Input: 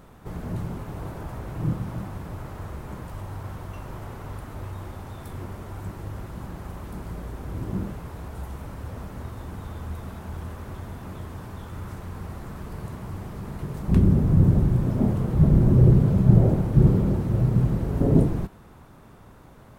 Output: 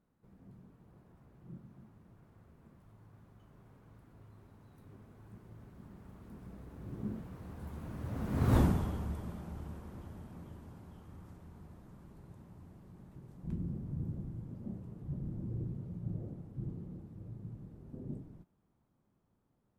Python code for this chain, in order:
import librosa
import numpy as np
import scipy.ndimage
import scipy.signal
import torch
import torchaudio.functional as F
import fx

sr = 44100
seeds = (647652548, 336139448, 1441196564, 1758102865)

p1 = fx.doppler_pass(x, sr, speed_mps=31, closest_m=2.2, pass_at_s=8.57)
p2 = fx.peak_eq(p1, sr, hz=210.0, db=8.0, octaves=2.0)
p3 = fx.rider(p2, sr, range_db=3, speed_s=2.0)
p4 = p2 + (p3 * librosa.db_to_amplitude(0.0))
y = p4 * librosa.db_to_amplitude(3.0)